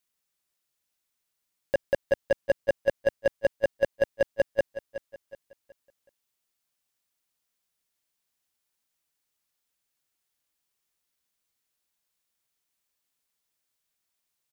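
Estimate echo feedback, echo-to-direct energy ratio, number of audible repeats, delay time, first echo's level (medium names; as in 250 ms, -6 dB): 36%, -12.5 dB, 3, 371 ms, -13.0 dB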